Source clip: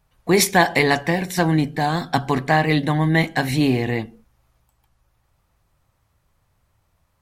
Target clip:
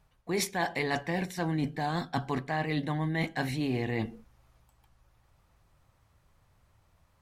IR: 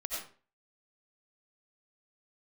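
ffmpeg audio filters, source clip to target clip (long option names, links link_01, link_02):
-af "highshelf=frequency=9800:gain=-7,areverse,acompressor=threshold=-28dB:ratio=6,areverse"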